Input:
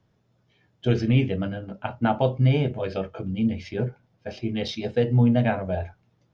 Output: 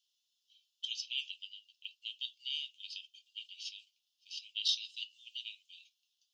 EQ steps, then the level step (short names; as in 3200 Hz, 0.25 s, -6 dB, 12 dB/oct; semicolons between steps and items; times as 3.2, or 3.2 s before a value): steep high-pass 2800 Hz 96 dB/oct; +3.5 dB